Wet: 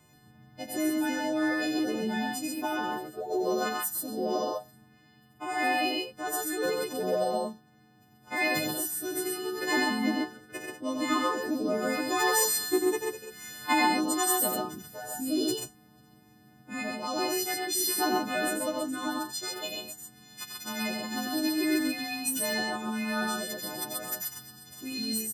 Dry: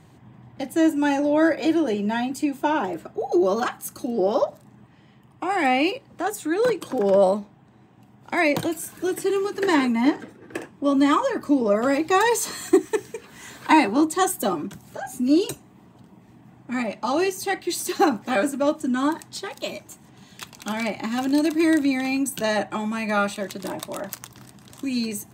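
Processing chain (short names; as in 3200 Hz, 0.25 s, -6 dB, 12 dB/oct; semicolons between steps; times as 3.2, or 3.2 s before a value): frequency quantiser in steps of 3 st; harmonic-percussive split harmonic -4 dB; loudspeakers at several distances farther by 31 m -5 dB, 45 m -2 dB; gain -7 dB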